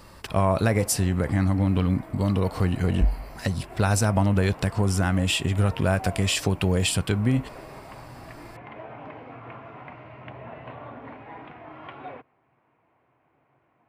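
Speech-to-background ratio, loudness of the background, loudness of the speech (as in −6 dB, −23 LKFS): 18.5 dB, −42.5 LKFS, −24.0 LKFS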